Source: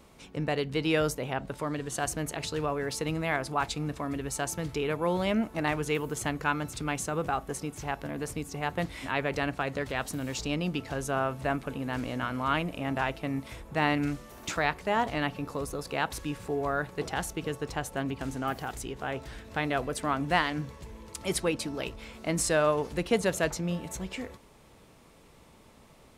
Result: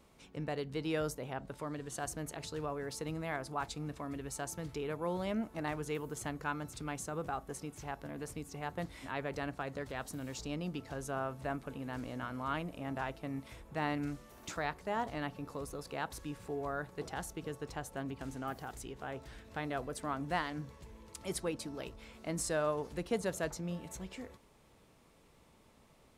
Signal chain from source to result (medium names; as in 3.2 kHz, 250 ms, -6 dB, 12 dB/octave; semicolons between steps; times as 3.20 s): dynamic bell 2.6 kHz, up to -5 dB, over -46 dBFS, Q 1.4; trim -8 dB